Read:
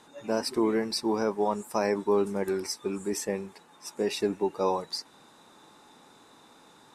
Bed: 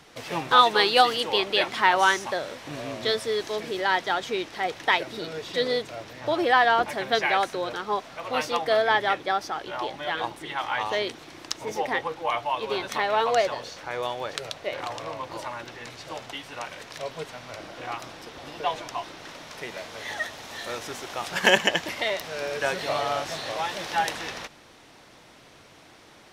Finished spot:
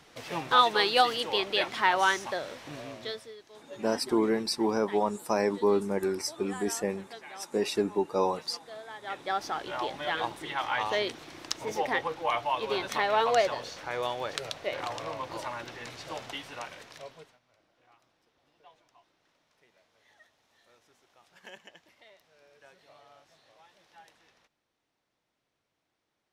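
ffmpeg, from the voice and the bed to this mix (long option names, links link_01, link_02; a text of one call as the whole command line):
ffmpeg -i stem1.wav -i stem2.wav -filter_complex "[0:a]adelay=3550,volume=0dB[link_01];[1:a]volume=16dB,afade=type=out:start_time=2.61:duration=0.75:silence=0.125893,afade=type=in:start_time=9:duration=0.49:silence=0.0944061,afade=type=out:start_time=16.34:duration=1.05:silence=0.0398107[link_02];[link_01][link_02]amix=inputs=2:normalize=0" out.wav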